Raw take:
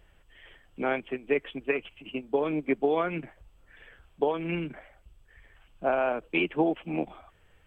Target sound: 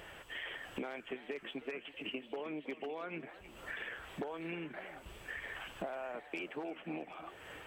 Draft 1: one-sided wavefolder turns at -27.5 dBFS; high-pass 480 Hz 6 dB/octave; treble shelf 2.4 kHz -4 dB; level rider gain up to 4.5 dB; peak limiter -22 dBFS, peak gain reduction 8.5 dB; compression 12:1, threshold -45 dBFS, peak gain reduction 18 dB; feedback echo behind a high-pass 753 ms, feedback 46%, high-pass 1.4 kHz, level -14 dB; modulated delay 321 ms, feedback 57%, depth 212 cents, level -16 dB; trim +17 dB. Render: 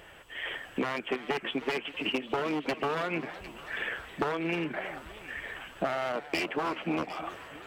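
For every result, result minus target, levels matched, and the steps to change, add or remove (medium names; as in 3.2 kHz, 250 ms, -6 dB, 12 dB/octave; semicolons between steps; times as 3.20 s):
one-sided wavefolder: distortion +20 dB; compression: peak gain reduction -12 dB
change: one-sided wavefolder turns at -17.5 dBFS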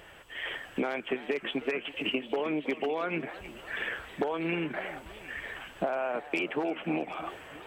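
compression: peak gain reduction -11 dB
change: compression 12:1, threshold -57 dBFS, peak gain reduction 30 dB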